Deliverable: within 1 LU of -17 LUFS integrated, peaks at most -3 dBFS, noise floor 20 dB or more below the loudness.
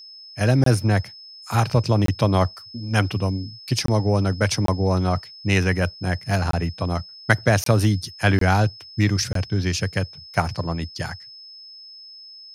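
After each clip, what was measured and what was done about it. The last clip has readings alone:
dropouts 8; longest dropout 23 ms; steady tone 5200 Hz; tone level -40 dBFS; loudness -22.0 LUFS; peak -4.0 dBFS; loudness target -17.0 LUFS
-> interpolate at 0.64/2.06/3.86/4.66/6.51/7.64/8.39/9.33, 23 ms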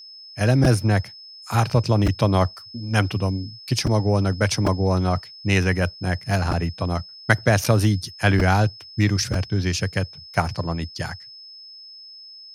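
dropouts 0; steady tone 5200 Hz; tone level -40 dBFS
-> notch 5200 Hz, Q 30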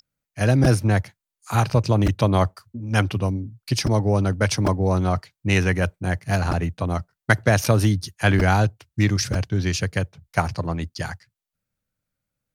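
steady tone none; loudness -22.0 LUFS; peak -3.5 dBFS; loudness target -17.0 LUFS
-> gain +5 dB; limiter -3 dBFS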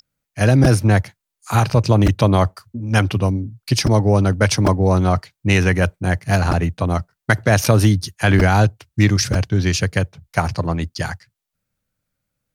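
loudness -17.5 LUFS; peak -3.0 dBFS; noise floor -82 dBFS

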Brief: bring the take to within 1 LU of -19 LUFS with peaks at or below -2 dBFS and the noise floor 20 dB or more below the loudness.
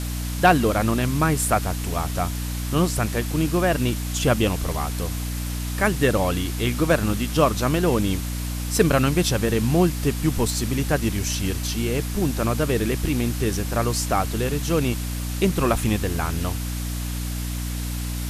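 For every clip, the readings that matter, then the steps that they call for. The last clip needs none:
hum 60 Hz; harmonics up to 300 Hz; hum level -25 dBFS; noise floor -28 dBFS; noise floor target -43 dBFS; loudness -23.0 LUFS; peak -4.5 dBFS; loudness target -19.0 LUFS
-> notches 60/120/180/240/300 Hz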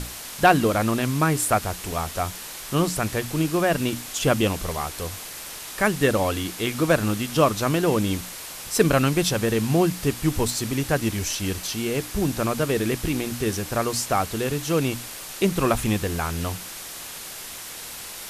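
hum none; noise floor -37 dBFS; noise floor target -44 dBFS
-> denoiser 7 dB, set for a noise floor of -37 dBFS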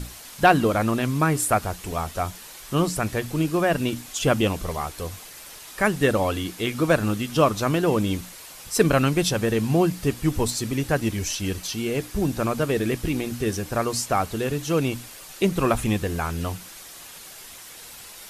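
noise floor -43 dBFS; noise floor target -44 dBFS
-> denoiser 6 dB, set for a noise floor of -43 dBFS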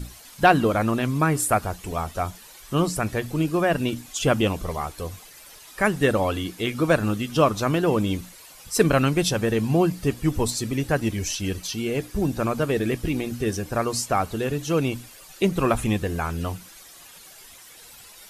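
noise floor -47 dBFS; loudness -24.0 LUFS; peak -5.0 dBFS; loudness target -19.0 LUFS
-> gain +5 dB; limiter -2 dBFS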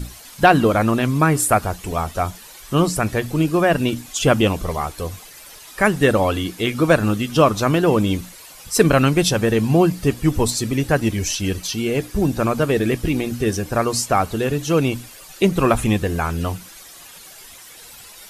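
loudness -19.0 LUFS; peak -2.0 dBFS; noise floor -42 dBFS

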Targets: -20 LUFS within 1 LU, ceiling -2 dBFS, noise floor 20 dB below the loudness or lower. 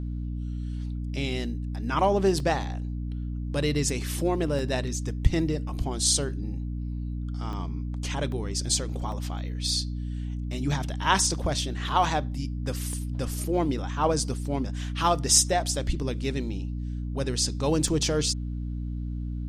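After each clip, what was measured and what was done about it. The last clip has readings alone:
dropouts 7; longest dropout 1.4 ms; hum 60 Hz; harmonics up to 300 Hz; hum level -29 dBFS; loudness -27.5 LUFS; peak -5.0 dBFS; loudness target -20.0 LUFS
-> interpolate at 2.4/4.59/7.53/8.32/9.12/12.93/17.88, 1.4 ms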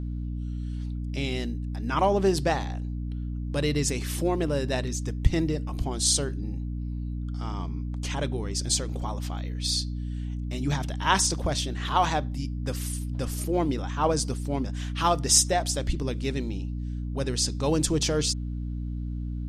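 dropouts 0; hum 60 Hz; harmonics up to 300 Hz; hum level -29 dBFS
-> de-hum 60 Hz, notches 5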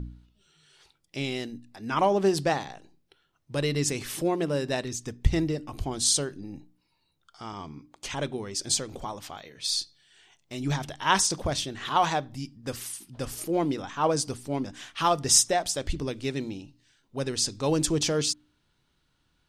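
hum none; loudness -27.5 LUFS; peak -5.0 dBFS; loudness target -20.0 LUFS
-> gain +7.5 dB; limiter -2 dBFS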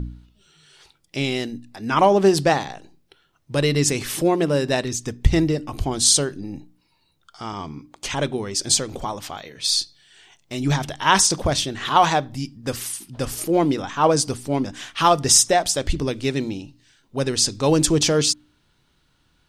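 loudness -20.5 LUFS; peak -2.0 dBFS; noise floor -65 dBFS

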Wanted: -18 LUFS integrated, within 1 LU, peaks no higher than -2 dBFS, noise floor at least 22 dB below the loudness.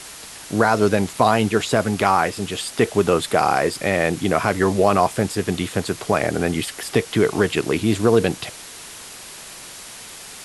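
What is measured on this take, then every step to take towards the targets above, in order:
noise floor -39 dBFS; noise floor target -42 dBFS; loudness -20.0 LUFS; peak -2.5 dBFS; loudness target -18.0 LUFS
-> denoiser 6 dB, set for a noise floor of -39 dBFS; gain +2 dB; limiter -2 dBFS

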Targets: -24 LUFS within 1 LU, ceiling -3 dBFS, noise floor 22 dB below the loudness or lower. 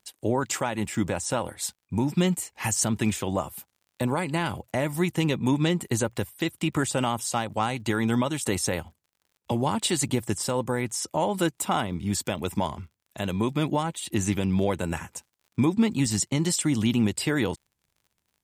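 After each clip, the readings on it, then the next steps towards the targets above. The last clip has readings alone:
ticks 49/s; loudness -27.0 LUFS; peak -11.5 dBFS; loudness target -24.0 LUFS
-> de-click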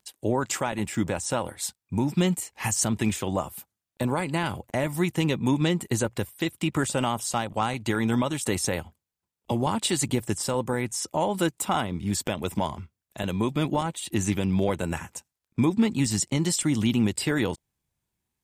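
ticks 0.16/s; loudness -27.0 LUFS; peak -11.5 dBFS; loudness target -24.0 LUFS
-> gain +3 dB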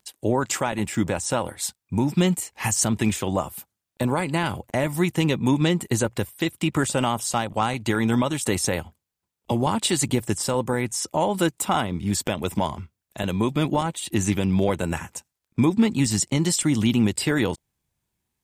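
loudness -24.0 LUFS; peak -8.5 dBFS; noise floor -84 dBFS

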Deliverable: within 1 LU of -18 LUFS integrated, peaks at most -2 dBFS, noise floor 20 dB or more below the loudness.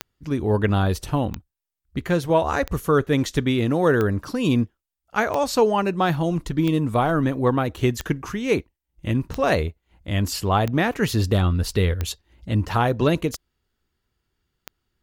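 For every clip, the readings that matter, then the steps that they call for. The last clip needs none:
clicks 12; loudness -22.5 LUFS; peak -7.0 dBFS; loudness target -18.0 LUFS
-> de-click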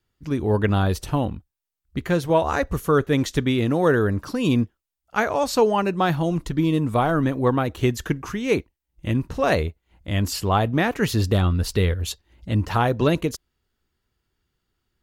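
clicks 0; loudness -22.5 LUFS; peak -7.0 dBFS; loudness target -18.0 LUFS
-> gain +4.5 dB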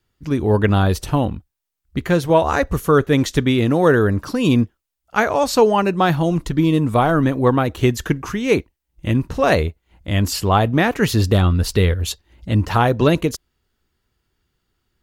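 loudness -18.0 LUFS; peak -2.5 dBFS; noise floor -76 dBFS

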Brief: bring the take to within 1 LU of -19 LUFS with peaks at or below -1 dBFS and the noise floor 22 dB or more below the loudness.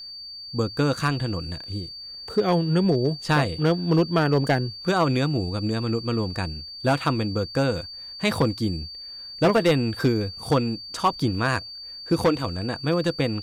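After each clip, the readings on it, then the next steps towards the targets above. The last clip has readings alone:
clipped 0.7%; flat tops at -13.0 dBFS; steady tone 4600 Hz; tone level -36 dBFS; loudness -24.0 LUFS; peak -13.0 dBFS; loudness target -19.0 LUFS
-> clip repair -13 dBFS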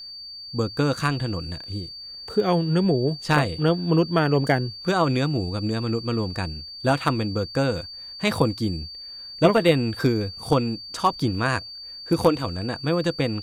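clipped 0.0%; steady tone 4600 Hz; tone level -36 dBFS
-> notch 4600 Hz, Q 30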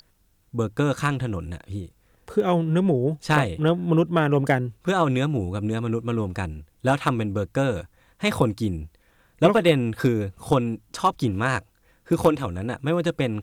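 steady tone none; loudness -23.5 LUFS; peak -4.0 dBFS; loudness target -19.0 LUFS
-> gain +4.5 dB; limiter -1 dBFS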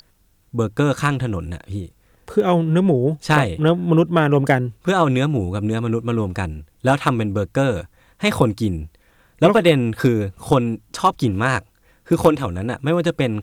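loudness -19.5 LUFS; peak -1.0 dBFS; noise floor -59 dBFS

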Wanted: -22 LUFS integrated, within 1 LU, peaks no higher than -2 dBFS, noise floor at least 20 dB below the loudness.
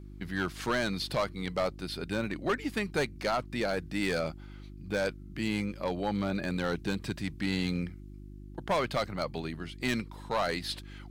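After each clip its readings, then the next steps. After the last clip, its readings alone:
clipped 1.3%; flat tops at -23.0 dBFS; hum 50 Hz; harmonics up to 350 Hz; hum level -44 dBFS; loudness -33.0 LUFS; peak -23.0 dBFS; loudness target -22.0 LUFS
-> clip repair -23 dBFS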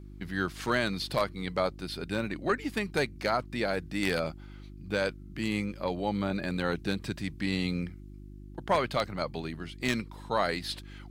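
clipped 0.0%; hum 50 Hz; harmonics up to 350 Hz; hum level -44 dBFS
-> de-hum 50 Hz, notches 7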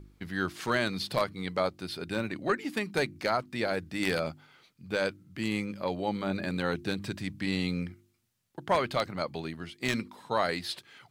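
hum none; loudness -32.0 LUFS; peak -13.0 dBFS; loudness target -22.0 LUFS
-> gain +10 dB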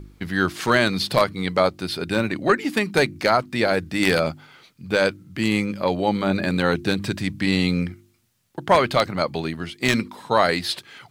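loudness -22.0 LUFS; peak -3.0 dBFS; noise floor -59 dBFS

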